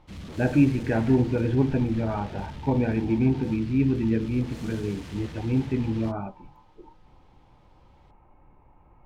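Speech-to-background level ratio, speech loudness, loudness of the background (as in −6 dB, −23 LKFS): 15.5 dB, −25.5 LKFS, −41.0 LKFS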